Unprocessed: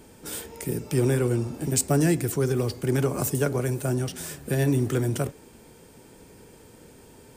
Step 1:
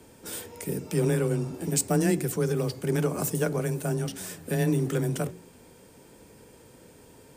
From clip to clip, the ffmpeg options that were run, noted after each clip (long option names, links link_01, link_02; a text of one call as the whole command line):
ffmpeg -i in.wav -af "bandreject=frequency=50.59:width_type=h:width=4,bandreject=frequency=101.18:width_type=h:width=4,bandreject=frequency=151.77:width_type=h:width=4,bandreject=frequency=202.36:width_type=h:width=4,bandreject=frequency=252.95:width_type=h:width=4,bandreject=frequency=303.54:width_type=h:width=4,bandreject=frequency=354.13:width_type=h:width=4,afreqshift=20,volume=-2dB" out.wav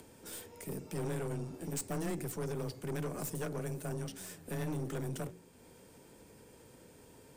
ffmpeg -i in.wav -af "acompressor=mode=upward:threshold=-42dB:ratio=2.5,aeval=exprs='(tanh(20*val(0)+0.45)-tanh(0.45))/20':channel_layout=same,volume=-7dB" out.wav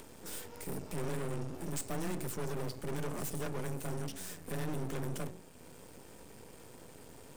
ffmpeg -i in.wav -af "aeval=exprs='max(val(0),0)':channel_layout=same,volume=8.5dB" out.wav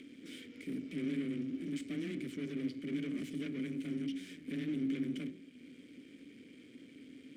ffmpeg -i in.wav -filter_complex "[0:a]asplit=3[link_01][link_02][link_03];[link_01]bandpass=frequency=270:width_type=q:width=8,volume=0dB[link_04];[link_02]bandpass=frequency=2290:width_type=q:width=8,volume=-6dB[link_05];[link_03]bandpass=frequency=3010:width_type=q:width=8,volume=-9dB[link_06];[link_04][link_05][link_06]amix=inputs=3:normalize=0,volume=12dB" out.wav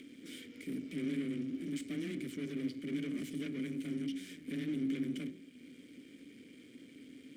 ffmpeg -i in.wav -af "highshelf=frequency=7800:gain=8,bandreject=frequency=2600:width=29" out.wav